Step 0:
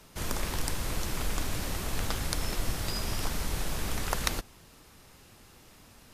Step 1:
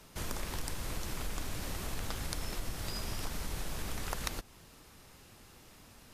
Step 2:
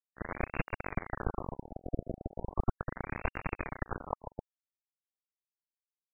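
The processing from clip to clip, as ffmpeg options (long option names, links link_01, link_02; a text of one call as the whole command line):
ffmpeg -i in.wav -af "acompressor=threshold=-35dB:ratio=2,volume=-1.5dB" out.wav
ffmpeg -i in.wav -af "acrusher=bits=4:mix=0:aa=0.000001,afftfilt=real='re*lt(b*sr/1024,720*pow(2800/720,0.5+0.5*sin(2*PI*0.37*pts/sr)))':imag='im*lt(b*sr/1024,720*pow(2800/720,0.5+0.5*sin(2*PI*0.37*pts/sr)))':win_size=1024:overlap=0.75,volume=5dB" out.wav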